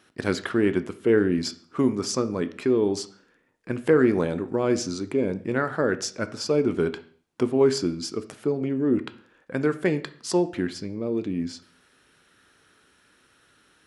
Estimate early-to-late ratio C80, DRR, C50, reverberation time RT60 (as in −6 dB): 19.5 dB, 10.5 dB, 15.5 dB, 0.50 s